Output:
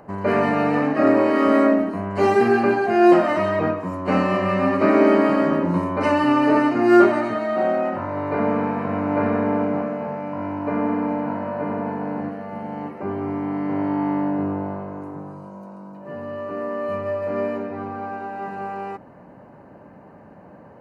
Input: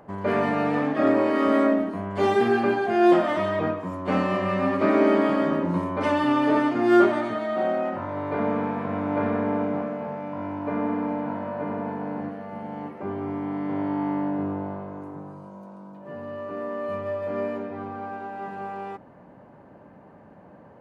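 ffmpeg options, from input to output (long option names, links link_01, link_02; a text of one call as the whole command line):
ffmpeg -i in.wav -af "asuperstop=centerf=3400:order=8:qfactor=5.4,volume=4dB" out.wav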